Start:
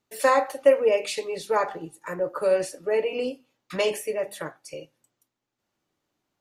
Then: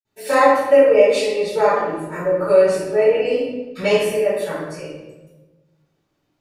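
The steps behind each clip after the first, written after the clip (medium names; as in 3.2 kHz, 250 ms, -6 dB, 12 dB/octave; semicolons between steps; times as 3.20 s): reverberation RT60 1.1 s, pre-delay 47 ms; trim -4.5 dB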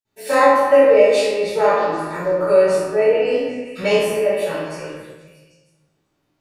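spectral sustain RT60 0.42 s; repeats whose band climbs or falls 158 ms, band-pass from 840 Hz, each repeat 0.7 oct, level -6 dB; trim -1 dB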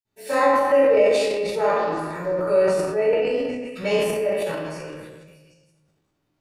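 bass shelf 210 Hz +4.5 dB; transient shaper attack 0 dB, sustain +7 dB; trim -6 dB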